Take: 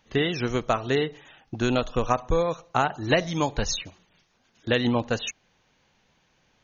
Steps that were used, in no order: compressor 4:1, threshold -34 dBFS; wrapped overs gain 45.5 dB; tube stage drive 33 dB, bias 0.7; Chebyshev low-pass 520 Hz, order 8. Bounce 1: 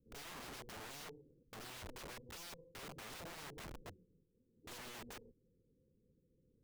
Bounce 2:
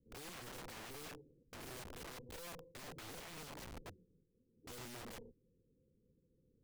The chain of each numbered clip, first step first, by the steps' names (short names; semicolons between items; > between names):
Chebyshev low-pass > compressor > tube stage > wrapped overs; Chebyshev low-pass > tube stage > compressor > wrapped overs